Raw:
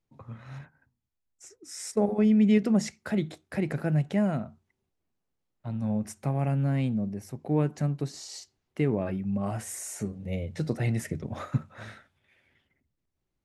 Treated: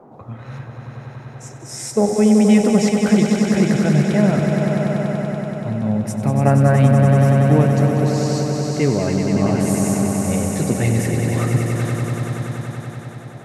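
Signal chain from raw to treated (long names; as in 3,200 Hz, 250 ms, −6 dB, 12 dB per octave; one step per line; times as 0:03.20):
gain on a spectral selection 0:06.45–0:06.76, 300–2,000 Hz +10 dB
echo that builds up and dies away 95 ms, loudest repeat 5, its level −7 dB
noise in a band 130–840 Hz −53 dBFS
level +8.5 dB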